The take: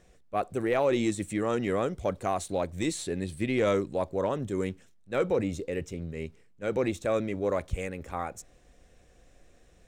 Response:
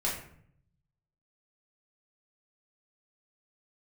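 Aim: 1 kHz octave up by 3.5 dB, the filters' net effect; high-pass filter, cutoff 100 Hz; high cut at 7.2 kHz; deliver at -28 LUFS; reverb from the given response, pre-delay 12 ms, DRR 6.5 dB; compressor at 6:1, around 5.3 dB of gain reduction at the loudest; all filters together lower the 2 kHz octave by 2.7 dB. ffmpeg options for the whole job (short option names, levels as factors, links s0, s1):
-filter_complex "[0:a]highpass=100,lowpass=7200,equalizer=f=1000:t=o:g=6,equalizer=f=2000:t=o:g=-5,acompressor=threshold=0.0501:ratio=6,asplit=2[s0][s1];[1:a]atrim=start_sample=2205,adelay=12[s2];[s1][s2]afir=irnorm=-1:irlink=0,volume=0.211[s3];[s0][s3]amix=inputs=2:normalize=0,volume=1.58"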